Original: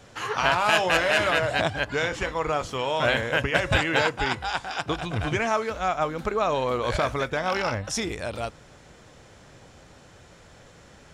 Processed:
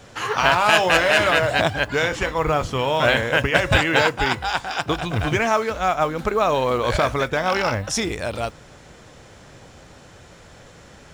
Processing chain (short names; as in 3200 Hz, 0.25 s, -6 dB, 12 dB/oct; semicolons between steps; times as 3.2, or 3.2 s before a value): 2.38–2.99 tone controls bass +6 dB, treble -3 dB; modulation noise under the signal 34 dB; gain +5 dB